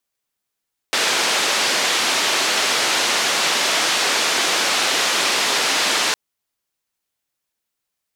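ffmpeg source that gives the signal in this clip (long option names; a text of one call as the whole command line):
ffmpeg -f lavfi -i "anoisesrc=color=white:duration=5.21:sample_rate=44100:seed=1,highpass=frequency=320,lowpass=frequency=5100,volume=-7.8dB" out.wav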